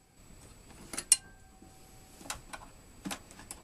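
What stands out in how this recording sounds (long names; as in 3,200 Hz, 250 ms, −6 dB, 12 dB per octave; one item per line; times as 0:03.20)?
background noise floor −61 dBFS
spectral slope −1.5 dB per octave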